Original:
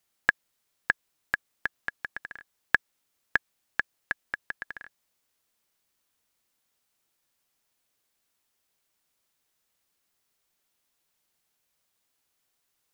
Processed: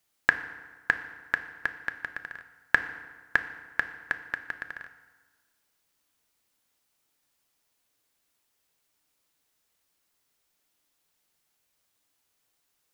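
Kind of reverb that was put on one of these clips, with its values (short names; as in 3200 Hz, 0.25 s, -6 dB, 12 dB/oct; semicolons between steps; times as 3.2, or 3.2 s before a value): FDN reverb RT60 1.4 s, low-frequency decay 1×, high-frequency decay 0.7×, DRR 8.5 dB; gain +1 dB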